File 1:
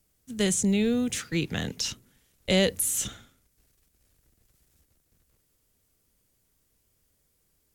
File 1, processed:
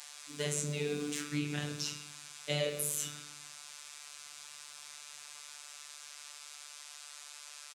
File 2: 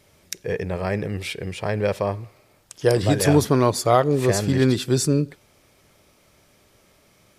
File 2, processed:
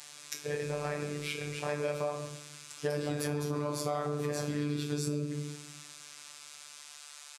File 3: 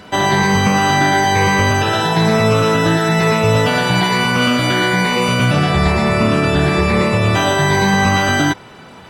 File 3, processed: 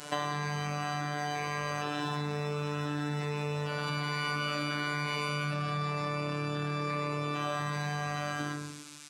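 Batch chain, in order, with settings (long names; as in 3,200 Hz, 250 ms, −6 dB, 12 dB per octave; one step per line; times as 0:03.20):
fade-out on the ending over 1.86 s
high-pass filter 100 Hz 24 dB per octave
high-shelf EQ 3,000 Hz −8.5 dB
rectangular room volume 96 cubic metres, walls mixed, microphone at 0.67 metres
noise in a band 610–8,800 Hz −47 dBFS
phases set to zero 147 Hz
brickwall limiter −7.5 dBFS
downward compressor 6 to 1, threshold −22 dBFS
spectral tilt +1.5 dB per octave
far-end echo of a speakerphone 130 ms, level −10 dB
level −4.5 dB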